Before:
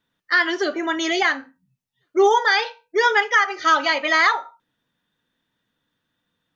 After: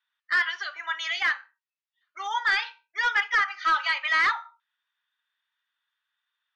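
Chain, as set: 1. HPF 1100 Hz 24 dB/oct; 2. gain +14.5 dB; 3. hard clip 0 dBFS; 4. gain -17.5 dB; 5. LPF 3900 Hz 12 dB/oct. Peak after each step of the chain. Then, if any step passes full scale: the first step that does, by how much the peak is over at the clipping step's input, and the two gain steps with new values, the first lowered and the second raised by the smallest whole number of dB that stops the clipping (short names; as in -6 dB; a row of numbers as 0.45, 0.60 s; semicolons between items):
-6.5, +8.0, 0.0, -17.5, -17.0 dBFS; step 2, 8.0 dB; step 2 +6.5 dB, step 4 -9.5 dB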